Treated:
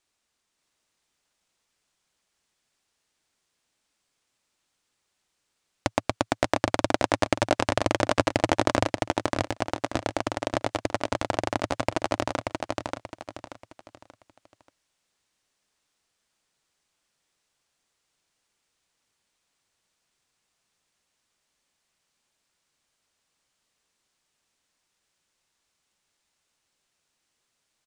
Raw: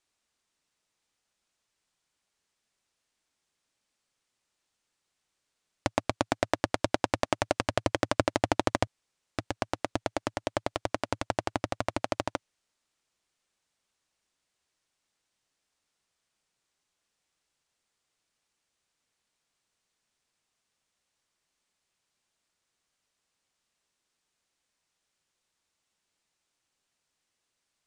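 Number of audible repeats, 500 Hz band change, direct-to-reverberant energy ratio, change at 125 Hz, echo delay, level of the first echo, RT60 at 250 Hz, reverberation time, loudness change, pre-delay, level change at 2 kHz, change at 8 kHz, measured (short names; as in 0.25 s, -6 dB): 4, +4.5 dB, none, +4.5 dB, 0.583 s, -3.0 dB, none, none, +4.0 dB, none, +4.5 dB, +4.5 dB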